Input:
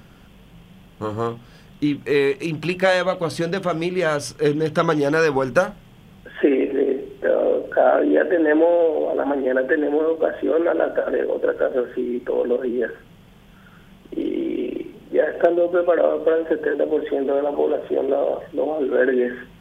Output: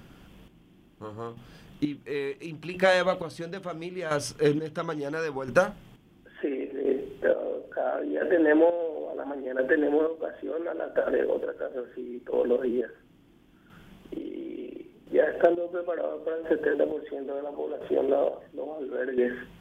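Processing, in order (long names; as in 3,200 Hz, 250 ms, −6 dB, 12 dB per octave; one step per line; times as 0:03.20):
square-wave tremolo 0.73 Hz, depth 65%, duty 35%
noise in a band 220–360 Hz −58 dBFS
level −4 dB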